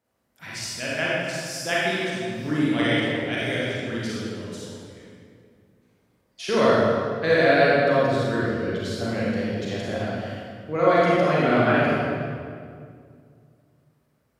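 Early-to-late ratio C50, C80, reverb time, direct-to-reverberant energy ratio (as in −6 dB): −4.5 dB, −1.5 dB, 2.2 s, −7.5 dB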